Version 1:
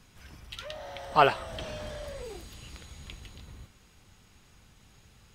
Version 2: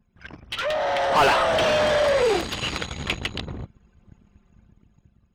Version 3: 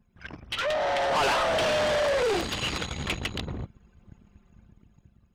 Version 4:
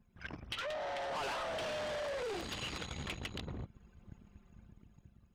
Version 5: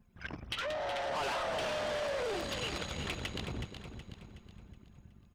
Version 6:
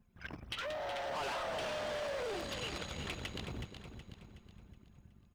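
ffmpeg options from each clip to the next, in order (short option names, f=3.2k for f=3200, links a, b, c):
-filter_complex "[0:a]anlmdn=0.01,asplit=2[a][b];[b]highpass=f=720:p=1,volume=36dB,asoftclip=type=tanh:threshold=-6.5dB[c];[a][c]amix=inputs=2:normalize=0,lowpass=f=2.2k:p=1,volume=-6dB,dynaudnorm=f=210:g=9:m=10.5dB,volume=-8dB"
-af "asoftclip=type=tanh:threshold=-22dB"
-af "acompressor=threshold=-36dB:ratio=6,volume=-3dB"
-af "aecho=1:1:371|742|1113|1484|1855:0.376|0.162|0.0695|0.0299|0.0128,volume=3dB"
-af "acrusher=bits=9:mode=log:mix=0:aa=0.000001,volume=-3.5dB"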